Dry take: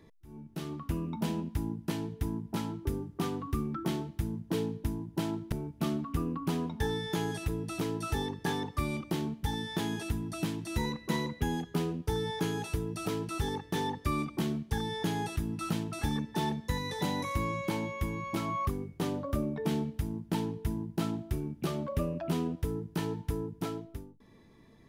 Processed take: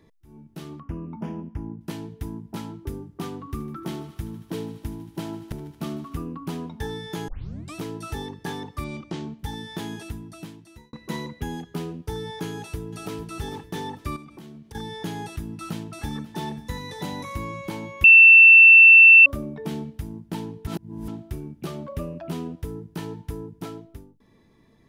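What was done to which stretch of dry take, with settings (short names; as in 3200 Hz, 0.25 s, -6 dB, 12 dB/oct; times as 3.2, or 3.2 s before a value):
0.8–1.81 running mean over 11 samples
3.35–6.15 thinning echo 76 ms, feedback 82%, level -15 dB
7.28 tape start 0.47 s
8.84–9.39 LPF 7500 Hz 24 dB/oct
9.92–10.93 fade out
12.47–13.18 echo throw 0.45 s, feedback 40%, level -11.5 dB
14.16–14.75 compressor, threshold -40 dBFS
15.53–16.36 echo throw 0.54 s, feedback 60%, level -17 dB
18.04–19.26 bleep 2680 Hz -6.5 dBFS
20.67–21.08 reverse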